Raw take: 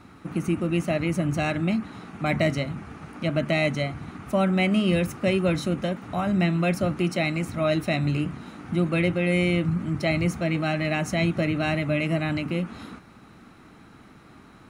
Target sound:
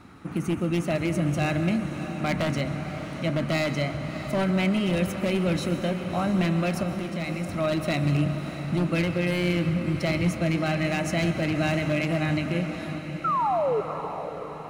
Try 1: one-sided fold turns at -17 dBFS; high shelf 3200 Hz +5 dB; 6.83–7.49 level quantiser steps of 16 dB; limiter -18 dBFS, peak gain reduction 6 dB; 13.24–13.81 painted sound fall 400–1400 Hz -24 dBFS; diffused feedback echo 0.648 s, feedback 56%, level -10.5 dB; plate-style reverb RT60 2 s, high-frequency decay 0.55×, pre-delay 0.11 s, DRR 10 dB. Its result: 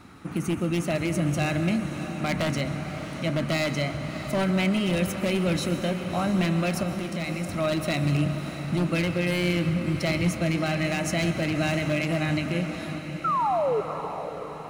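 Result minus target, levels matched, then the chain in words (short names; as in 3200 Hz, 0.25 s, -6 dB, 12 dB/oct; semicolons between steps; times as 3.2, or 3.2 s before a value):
8000 Hz band +4.0 dB
one-sided fold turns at -17 dBFS; 6.83–7.49 level quantiser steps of 16 dB; limiter -18 dBFS, peak gain reduction 6 dB; 13.24–13.81 painted sound fall 400–1400 Hz -24 dBFS; diffused feedback echo 0.648 s, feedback 56%, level -10.5 dB; plate-style reverb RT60 2 s, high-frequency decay 0.55×, pre-delay 0.11 s, DRR 10 dB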